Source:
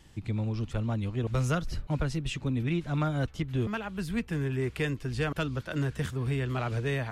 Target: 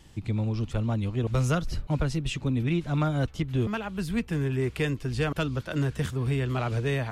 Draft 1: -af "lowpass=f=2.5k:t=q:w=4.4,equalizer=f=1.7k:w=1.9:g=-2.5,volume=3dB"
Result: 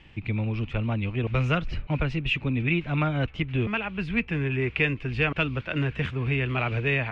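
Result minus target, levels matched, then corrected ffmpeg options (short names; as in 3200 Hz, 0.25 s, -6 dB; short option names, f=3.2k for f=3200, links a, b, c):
2000 Hz band +7.0 dB
-af "equalizer=f=1.7k:w=1.9:g=-2.5,volume=3dB"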